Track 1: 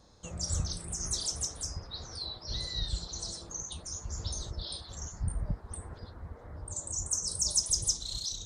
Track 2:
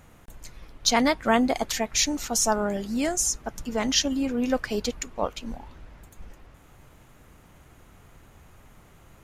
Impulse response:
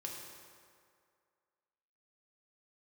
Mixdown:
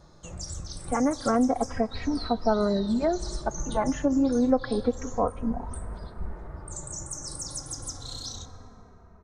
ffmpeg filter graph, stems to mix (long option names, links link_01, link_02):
-filter_complex "[0:a]acompressor=threshold=-34dB:ratio=6,volume=-1dB,asplit=2[link_01][link_02];[link_02]volume=-10.5dB[link_03];[1:a]lowpass=frequency=1400:width=0.5412,lowpass=frequency=1400:width=1.3066,dynaudnorm=framelen=420:gausssize=5:maxgain=12dB,asplit=2[link_04][link_05];[link_05]adelay=2.9,afreqshift=-0.3[link_06];[link_04][link_06]amix=inputs=2:normalize=1,volume=0.5dB,asplit=2[link_07][link_08];[link_08]volume=-17.5dB[link_09];[2:a]atrim=start_sample=2205[link_10];[link_03][link_09]amix=inputs=2:normalize=0[link_11];[link_11][link_10]afir=irnorm=-1:irlink=0[link_12];[link_01][link_07][link_12]amix=inputs=3:normalize=0,acompressor=threshold=-24dB:ratio=2"